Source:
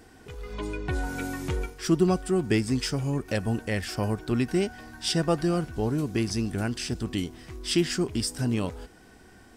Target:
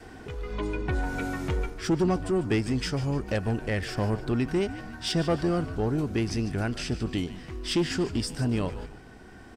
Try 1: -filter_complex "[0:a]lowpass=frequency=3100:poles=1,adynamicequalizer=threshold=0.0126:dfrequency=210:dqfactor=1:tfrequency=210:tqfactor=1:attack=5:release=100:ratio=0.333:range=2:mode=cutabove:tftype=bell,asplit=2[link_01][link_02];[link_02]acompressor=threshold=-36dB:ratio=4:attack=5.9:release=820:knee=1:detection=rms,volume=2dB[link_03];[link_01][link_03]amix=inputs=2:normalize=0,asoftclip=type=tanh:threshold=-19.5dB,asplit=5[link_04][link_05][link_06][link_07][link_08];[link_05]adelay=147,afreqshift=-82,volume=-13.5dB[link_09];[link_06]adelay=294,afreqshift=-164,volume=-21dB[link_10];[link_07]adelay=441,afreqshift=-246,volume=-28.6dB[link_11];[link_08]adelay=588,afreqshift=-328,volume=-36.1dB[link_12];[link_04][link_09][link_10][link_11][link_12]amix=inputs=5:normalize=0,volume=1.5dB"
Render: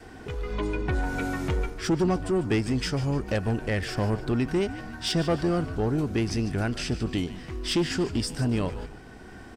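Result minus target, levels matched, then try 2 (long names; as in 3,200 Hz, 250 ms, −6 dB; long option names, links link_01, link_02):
downward compressor: peak gain reduction −8.5 dB
-filter_complex "[0:a]lowpass=frequency=3100:poles=1,adynamicequalizer=threshold=0.0126:dfrequency=210:dqfactor=1:tfrequency=210:tqfactor=1:attack=5:release=100:ratio=0.333:range=2:mode=cutabove:tftype=bell,asplit=2[link_01][link_02];[link_02]acompressor=threshold=-47.5dB:ratio=4:attack=5.9:release=820:knee=1:detection=rms,volume=2dB[link_03];[link_01][link_03]amix=inputs=2:normalize=0,asoftclip=type=tanh:threshold=-19.5dB,asplit=5[link_04][link_05][link_06][link_07][link_08];[link_05]adelay=147,afreqshift=-82,volume=-13.5dB[link_09];[link_06]adelay=294,afreqshift=-164,volume=-21dB[link_10];[link_07]adelay=441,afreqshift=-246,volume=-28.6dB[link_11];[link_08]adelay=588,afreqshift=-328,volume=-36.1dB[link_12];[link_04][link_09][link_10][link_11][link_12]amix=inputs=5:normalize=0,volume=1.5dB"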